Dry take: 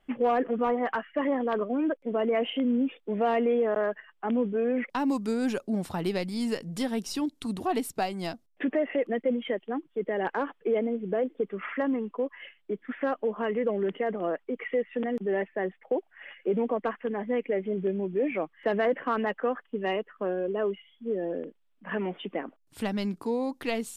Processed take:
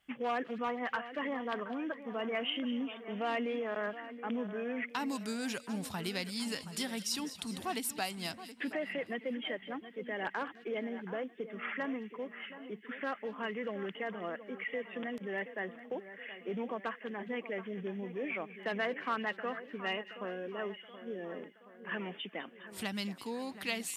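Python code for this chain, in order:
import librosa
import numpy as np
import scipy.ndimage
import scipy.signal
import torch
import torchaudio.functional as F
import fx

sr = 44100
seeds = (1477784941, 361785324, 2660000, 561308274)

y = scipy.signal.sosfilt(scipy.signal.butter(2, 64.0, 'highpass', fs=sr, output='sos'), x)
y = fx.tone_stack(y, sr, knobs='5-5-5')
y = fx.echo_split(y, sr, split_hz=2200.0, low_ms=724, high_ms=205, feedback_pct=52, wet_db=-13)
y = y * librosa.db_to_amplitude(8.5)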